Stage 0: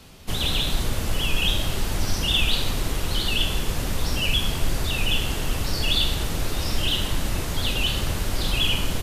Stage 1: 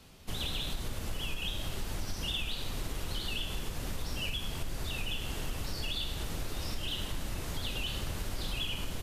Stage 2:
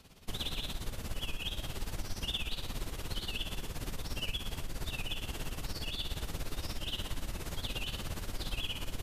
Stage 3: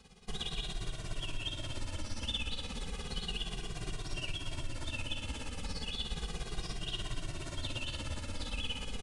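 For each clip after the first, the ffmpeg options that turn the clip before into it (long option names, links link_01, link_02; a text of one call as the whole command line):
ffmpeg -i in.wav -af "acompressor=threshold=-22dB:ratio=6,volume=-8.5dB" out.wav
ffmpeg -i in.wav -af "tremolo=f=17:d=0.72,volume=1dB" out.wav
ffmpeg -i in.wav -filter_complex "[0:a]asplit=2[link_01][link_02];[link_02]asplit=8[link_03][link_04][link_05][link_06][link_07][link_08][link_09][link_10];[link_03]adelay=244,afreqshift=-61,volume=-12.5dB[link_11];[link_04]adelay=488,afreqshift=-122,volume=-16.2dB[link_12];[link_05]adelay=732,afreqshift=-183,volume=-20dB[link_13];[link_06]adelay=976,afreqshift=-244,volume=-23.7dB[link_14];[link_07]adelay=1220,afreqshift=-305,volume=-27.5dB[link_15];[link_08]adelay=1464,afreqshift=-366,volume=-31.2dB[link_16];[link_09]adelay=1708,afreqshift=-427,volume=-35dB[link_17];[link_10]adelay=1952,afreqshift=-488,volume=-38.7dB[link_18];[link_11][link_12][link_13][link_14][link_15][link_16][link_17][link_18]amix=inputs=8:normalize=0[link_19];[link_01][link_19]amix=inputs=2:normalize=0,aresample=22050,aresample=44100,asplit=2[link_20][link_21];[link_21]adelay=2,afreqshift=-0.33[link_22];[link_20][link_22]amix=inputs=2:normalize=1,volume=2dB" out.wav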